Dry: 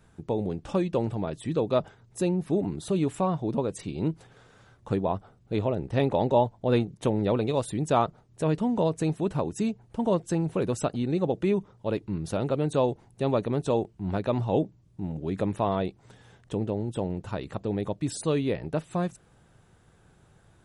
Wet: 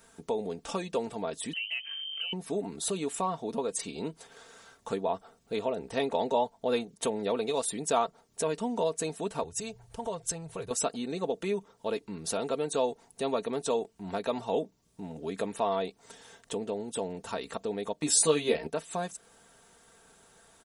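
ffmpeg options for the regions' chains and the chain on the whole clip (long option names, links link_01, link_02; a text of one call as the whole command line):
ffmpeg -i in.wav -filter_complex "[0:a]asettb=1/sr,asplit=3[link_01][link_02][link_03];[link_01]atrim=end=1.534[link_04];[link_02]atrim=start=1.53:end=2.33,asetpts=PTS-STARTPTS,afade=type=in:duration=0.004:curve=qsin,afade=type=out:start_time=0.796:duration=0.004:curve=qsin,aeval=exprs='val(0)+0.00631*(sin(2*PI*50*n/s)+sin(2*PI*2*50*n/s)/2+sin(2*PI*3*50*n/s)/3+sin(2*PI*4*50*n/s)/4+sin(2*PI*5*50*n/s)/5)':channel_layout=same,lowpass=frequency=2700:width_type=q:width=0.5098,lowpass=frequency=2700:width_type=q:width=0.6013,lowpass=frequency=2700:width_type=q:width=0.9,lowpass=frequency=2700:width_type=q:width=2.563,afreqshift=-3200,acompressor=threshold=-39dB:ratio=3:attack=3.2:release=140:knee=1:detection=peak[link_05];[link_03]atrim=start=2.326[link_06];[link_04][link_05]acrossfade=duration=0.004:curve1=hsin:curve2=qsin[link_07];[link_07][link_06]acrossfade=duration=0.004:curve1=qsin:curve2=hsin,asettb=1/sr,asplit=3[link_08][link_09][link_10];[link_08]atrim=end=9.434[link_11];[link_09]atrim=start=9.43:end=10.71,asetpts=PTS-STARTPTS,afade=type=in:duration=0.004:curve=qsin,afade=type=out:start_time=1.276:duration=0.004:curve=qsin,lowshelf=frequency=160:width_type=q:width=3:gain=12,acompressor=threshold=-35dB:ratio=2:attack=3.2:release=140:knee=1:detection=peak[link_12];[link_10]atrim=start=10.706[link_13];[link_11][link_12]acrossfade=duration=0.004:curve1=hsin:curve2=qsin[link_14];[link_14][link_13]acrossfade=duration=0.004:curve1=qsin:curve2=hsin,asettb=1/sr,asplit=3[link_15][link_16][link_17];[link_15]atrim=end=17.934[link_18];[link_16]atrim=start=17.93:end=18.67,asetpts=PTS-STARTPTS,afade=type=in:duration=0.004:curve=qsin,afade=type=out:start_time=0.736:duration=0.004:curve=qsin,agate=range=-11dB:threshold=-45dB:ratio=16:release=100:detection=peak,acontrast=33,asplit=2[link_19][link_20];[link_20]adelay=13,volume=-2dB[link_21];[link_19][link_21]amix=inputs=2:normalize=0,atrim=end_sample=32634[link_22];[link_17]atrim=start=18.666[link_23];[link_18][link_22]acrossfade=duration=0.004:curve1=hsin:curve2=qsin[link_24];[link_24][link_23]acrossfade=duration=0.004:curve1=qsin:curve2=hsin,aecho=1:1:4.4:0.56,acompressor=threshold=-36dB:ratio=1.5,bass=frequency=250:gain=-14,treble=frequency=4000:gain=9,volume=2.5dB" out.wav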